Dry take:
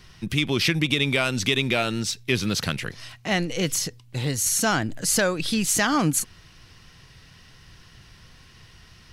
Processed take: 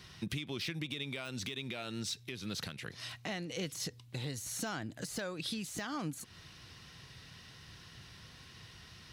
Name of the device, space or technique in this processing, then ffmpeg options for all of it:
broadcast voice chain: -af "highpass=72,deesser=0.5,acompressor=threshold=-33dB:ratio=4,equalizer=frequency=3800:width_type=o:width=0.28:gain=4.5,alimiter=limit=-24dB:level=0:latency=1:release=343,volume=-3dB"

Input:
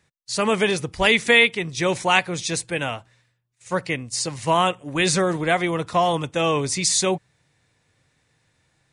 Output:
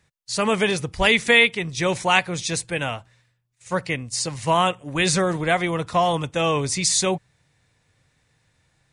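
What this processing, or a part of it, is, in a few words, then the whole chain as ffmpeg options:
low shelf boost with a cut just above: -af "lowshelf=frequency=78:gain=7,equalizer=frequency=330:width_type=o:width=0.77:gain=-2.5"

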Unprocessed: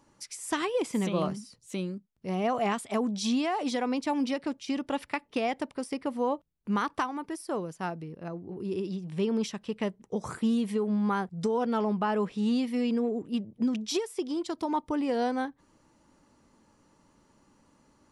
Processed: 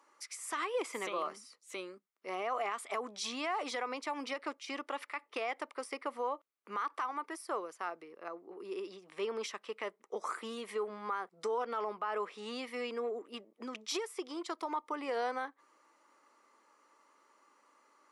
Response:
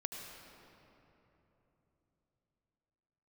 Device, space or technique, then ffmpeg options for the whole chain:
laptop speaker: -af "highpass=frequency=370:width=0.5412,highpass=frequency=370:width=1.3066,equalizer=frequency=1200:width_type=o:width=0.46:gain=11,equalizer=frequency=2100:width_type=o:width=0.44:gain=7.5,alimiter=limit=-22dB:level=0:latency=1:release=76,volume=-4.5dB"

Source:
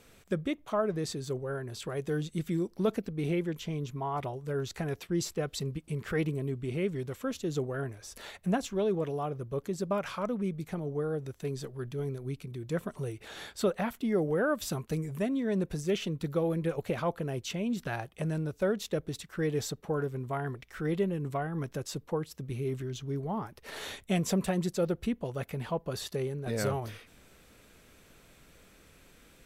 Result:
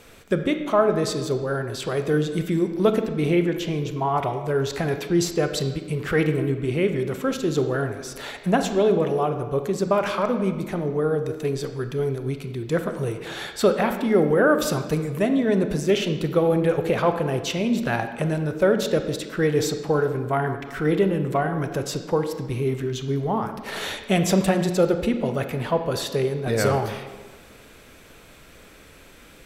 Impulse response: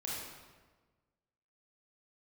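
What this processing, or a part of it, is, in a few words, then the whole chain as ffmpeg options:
filtered reverb send: -filter_complex "[0:a]asplit=2[link_01][link_02];[link_02]highpass=frequency=180:width=0.5412,highpass=frequency=180:width=1.3066,lowpass=4900[link_03];[1:a]atrim=start_sample=2205[link_04];[link_03][link_04]afir=irnorm=-1:irlink=0,volume=-6dB[link_05];[link_01][link_05]amix=inputs=2:normalize=0,volume=8.5dB"

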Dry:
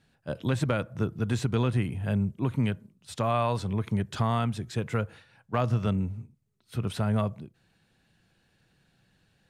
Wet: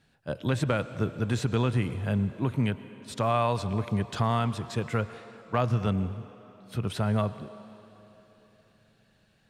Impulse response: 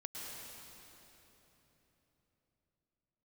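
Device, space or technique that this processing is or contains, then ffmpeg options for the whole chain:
filtered reverb send: -filter_complex "[0:a]asplit=2[link_01][link_02];[link_02]highpass=290,lowpass=8500[link_03];[1:a]atrim=start_sample=2205[link_04];[link_03][link_04]afir=irnorm=-1:irlink=0,volume=-9.5dB[link_05];[link_01][link_05]amix=inputs=2:normalize=0"

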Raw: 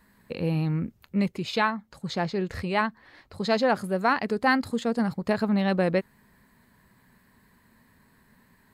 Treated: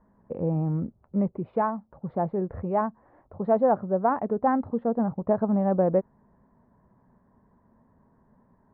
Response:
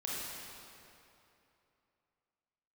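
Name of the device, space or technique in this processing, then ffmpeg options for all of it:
under water: -af "lowpass=frequency=990:width=0.5412,lowpass=frequency=990:width=1.3066,tiltshelf=frequency=1400:gain=-3,equalizer=frequency=620:width_type=o:width=0.53:gain=4,volume=2.5dB"

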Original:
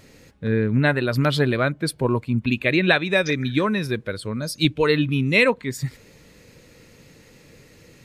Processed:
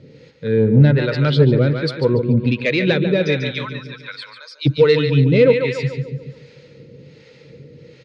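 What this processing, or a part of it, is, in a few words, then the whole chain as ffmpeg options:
guitar amplifier with harmonic tremolo: -filter_complex "[0:a]asplit=3[link_01][link_02][link_03];[link_01]afade=type=out:start_time=3.51:duration=0.02[link_04];[link_02]highpass=frequency=990:width=0.5412,highpass=frequency=990:width=1.3066,afade=type=in:start_time=3.51:duration=0.02,afade=type=out:start_time=4.65:duration=0.02[link_05];[link_03]afade=type=in:start_time=4.65:duration=0.02[link_06];[link_04][link_05][link_06]amix=inputs=3:normalize=0,aecho=1:1:144|288|432|576|720|864:0.355|0.188|0.0997|0.0528|0.028|0.0148,acrossover=split=550[link_07][link_08];[link_07]aeval=exprs='val(0)*(1-0.7/2+0.7/2*cos(2*PI*1.3*n/s))':channel_layout=same[link_09];[link_08]aeval=exprs='val(0)*(1-0.7/2-0.7/2*cos(2*PI*1.3*n/s))':channel_layout=same[link_10];[link_09][link_10]amix=inputs=2:normalize=0,asoftclip=type=tanh:threshold=-13.5dB,highpass=94,equalizer=frequency=140:width_type=q:width=4:gain=9,equalizer=frequency=480:width_type=q:width=4:gain=9,equalizer=frequency=710:width_type=q:width=4:gain=-10,equalizer=frequency=1100:width_type=q:width=4:gain=-9,equalizer=frequency=1700:width_type=q:width=4:gain=-5,equalizer=frequency=2600:width_type=q:width=4:gain=-3,lowpass=frequency=4600:width=0.5412,lowpass=frequency=4600:width=1.3066,volume=6.5dB"

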